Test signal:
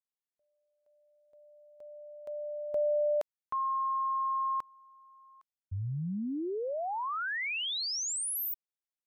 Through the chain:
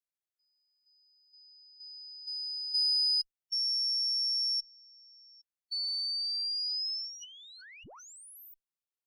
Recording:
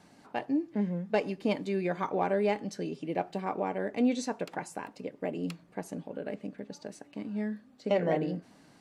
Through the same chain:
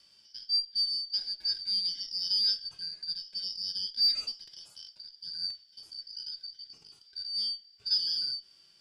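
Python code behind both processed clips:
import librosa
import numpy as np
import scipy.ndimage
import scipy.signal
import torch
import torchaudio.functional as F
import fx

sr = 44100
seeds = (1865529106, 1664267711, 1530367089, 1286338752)

y = fx.band_shuffle(x, sr, order='4321')
y = fx.cheby_harmonics(y, sr, harmonics=(5, 6, 8), levels_db=(-37, -34, -31), full_scale_db=-14.0)
y = fx.hpss(y, sr, part='percussive', gain_db=-18)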